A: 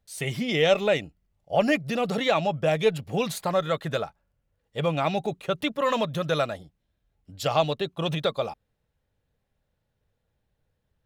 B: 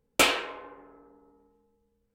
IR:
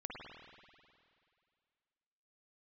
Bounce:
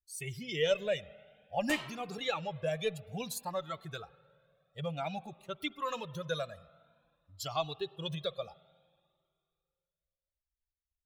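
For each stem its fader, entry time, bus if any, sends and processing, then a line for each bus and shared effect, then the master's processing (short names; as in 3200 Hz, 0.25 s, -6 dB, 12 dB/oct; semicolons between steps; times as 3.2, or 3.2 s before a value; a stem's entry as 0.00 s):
-5.0 dB, 0.00 s, send -16 dB, per-bin expansion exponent 1.5; high shelf 4000 Hz +7.5 dB
-12.5 dB, 1.50 s, no send, dry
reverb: on, RT60 2.3 s, pre-delay 49 ms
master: cascading flanger rising 0.54 Hz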